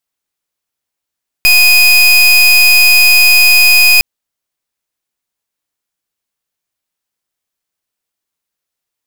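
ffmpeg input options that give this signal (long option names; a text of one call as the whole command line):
ffmpeg -f lavfi -i "aevalsrc='0.501*(2*lt(mod(2490*t,1),0.3)-1)':duration=2.56:sample_rate=44100" out.wav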